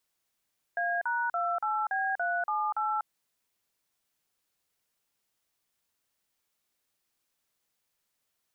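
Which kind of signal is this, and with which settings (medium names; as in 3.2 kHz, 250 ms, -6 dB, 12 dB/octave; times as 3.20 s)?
DTMF "A#28B378", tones 244 ms, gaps 41 ms, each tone -29.5 dBFS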